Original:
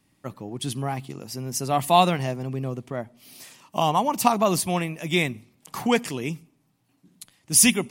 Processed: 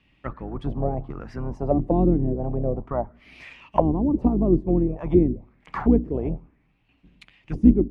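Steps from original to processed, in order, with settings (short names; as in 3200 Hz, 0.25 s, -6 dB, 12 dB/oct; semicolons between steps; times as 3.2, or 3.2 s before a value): octaver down 2 oct, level +1 dB; envelope low-pass 320–2800 Hz down, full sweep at -19 dBFS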